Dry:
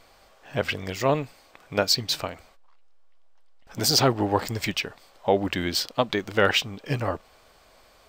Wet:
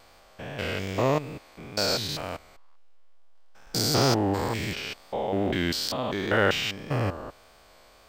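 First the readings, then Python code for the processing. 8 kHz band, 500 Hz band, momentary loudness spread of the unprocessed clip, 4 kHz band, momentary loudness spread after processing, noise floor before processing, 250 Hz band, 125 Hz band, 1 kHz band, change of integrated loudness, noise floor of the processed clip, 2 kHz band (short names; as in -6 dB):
-3.0 dB, -2.0 dB, 12 LU, -3.0 dB, 16 LU, -57 dBFS, 0.0 dB, +0.5 dB, -2.0 dB, -2.0 dB, -55 dBFS, -1.5 dB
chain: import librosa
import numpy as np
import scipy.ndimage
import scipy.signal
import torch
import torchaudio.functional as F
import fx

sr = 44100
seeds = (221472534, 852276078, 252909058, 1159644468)

y = fx.spec_steps(x, sr, hold_ms=200)
y = fx.wow_flutter(y, sr, seeds[0], rate_hz=2.1, depth_cents=32.0)
y = y * librosa.db_to_amplitude(2.5)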